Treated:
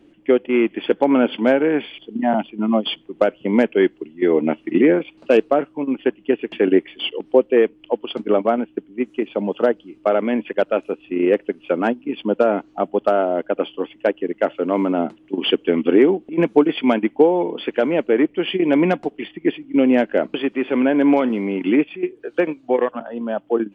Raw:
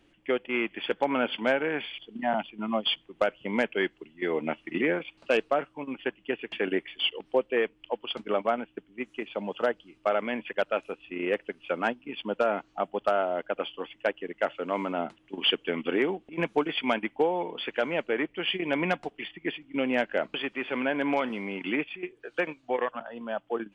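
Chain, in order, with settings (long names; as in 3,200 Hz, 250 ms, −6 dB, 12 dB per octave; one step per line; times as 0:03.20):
parametric band 300 Hz +13.5 dB 2.2 octaves
level +1.5 dB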